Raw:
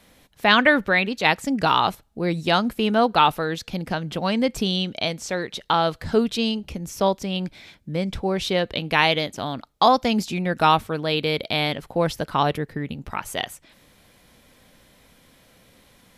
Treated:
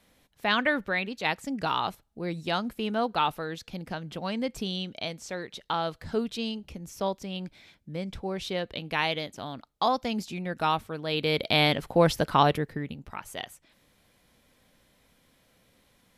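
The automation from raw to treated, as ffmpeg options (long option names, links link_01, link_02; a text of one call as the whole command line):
ffmpeg -i in.wav -af "volume=1dB,afade=type=in:start_time=11.02:duration=0.59:silence=0.316228,afade=type=out:start_time=12.28:duration=0.77:silence=0.298538" out.wav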